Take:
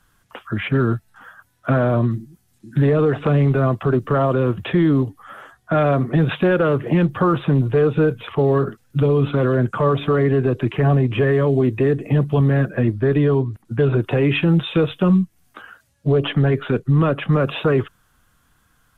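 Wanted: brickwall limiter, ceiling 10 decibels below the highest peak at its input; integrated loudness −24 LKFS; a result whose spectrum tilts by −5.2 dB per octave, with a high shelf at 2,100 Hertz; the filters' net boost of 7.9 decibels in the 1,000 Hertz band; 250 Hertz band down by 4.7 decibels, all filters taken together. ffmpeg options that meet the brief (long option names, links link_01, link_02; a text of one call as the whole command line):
ffmpeg -i in.wav -af "equalizer=frequency=250:width_type=o:gain=-8.5,equalizer=frequency=1000:width_type=o:gain=9,highshelf=frequency=2100:gain=7,volume=-2.5dB,alimiter=limit=-14.5dB:level=0:latency=1" out.wav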